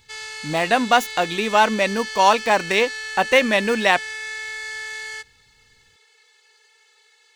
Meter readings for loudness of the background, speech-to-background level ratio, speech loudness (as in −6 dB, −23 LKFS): −30.0 LKFS, 11.0 dB, −19.0 LKFS